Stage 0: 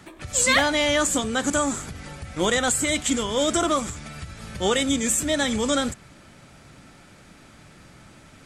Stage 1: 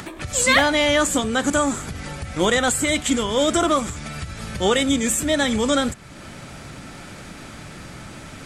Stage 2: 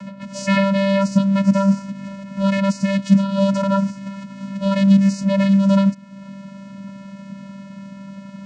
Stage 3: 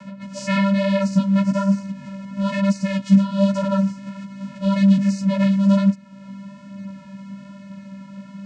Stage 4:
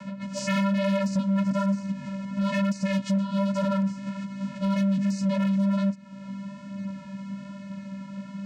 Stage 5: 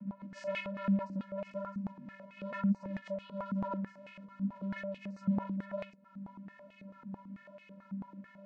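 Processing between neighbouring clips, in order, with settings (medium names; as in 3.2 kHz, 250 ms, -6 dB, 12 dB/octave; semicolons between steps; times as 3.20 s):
dynamic bell 6.5 kHz, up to -4 dB, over -37 dBFS, Q 1; in parallel at +1 dB: upward compressor, threshold -26 dBFS; on the sum: trim -3 dB
vocoder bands 8, square 196 Hz; trim +4.5 dB
chorus voices 2, 1.1 Hz, delay 13 ms, depth 3.3 ms
compression 3:1, threshold -21 dBFS, peak gain reduction 9.5 dB; hard clipper -20.5 dBFS, distortion -14 dB
step-sequenced band-pass 9.1 Hz 220–2500 Hz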